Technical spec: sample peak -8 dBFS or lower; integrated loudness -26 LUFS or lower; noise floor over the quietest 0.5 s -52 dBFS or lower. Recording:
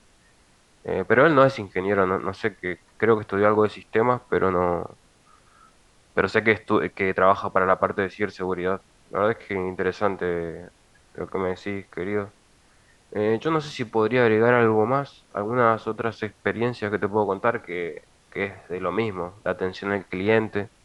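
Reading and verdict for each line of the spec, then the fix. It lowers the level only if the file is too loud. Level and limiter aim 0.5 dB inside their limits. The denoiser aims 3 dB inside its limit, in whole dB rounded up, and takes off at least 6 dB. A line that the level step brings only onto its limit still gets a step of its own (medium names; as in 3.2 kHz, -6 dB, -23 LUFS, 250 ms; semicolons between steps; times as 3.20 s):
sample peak -3.5 dBFS: fail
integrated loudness -23.5 LUFS: fail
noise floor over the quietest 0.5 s -58 dBFS: pass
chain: trim -3 dB; peak limiter -8.5 dBFS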